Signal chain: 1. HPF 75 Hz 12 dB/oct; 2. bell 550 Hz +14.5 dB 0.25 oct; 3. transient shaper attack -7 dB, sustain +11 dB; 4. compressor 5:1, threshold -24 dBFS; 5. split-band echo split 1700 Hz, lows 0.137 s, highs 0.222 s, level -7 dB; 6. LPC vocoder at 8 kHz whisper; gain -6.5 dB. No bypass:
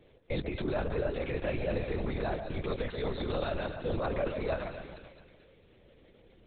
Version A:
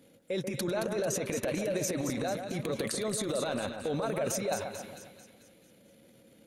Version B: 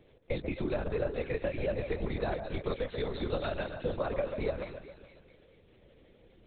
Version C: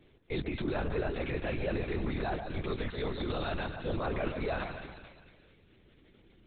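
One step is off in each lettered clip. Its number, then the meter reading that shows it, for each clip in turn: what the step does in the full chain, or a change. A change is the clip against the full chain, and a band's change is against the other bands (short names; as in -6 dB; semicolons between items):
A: 6, 4 kHz band +4.5 dB; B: 3, 500 Hz band +1.5 dB; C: 2, 500 Hz band -3.0 dB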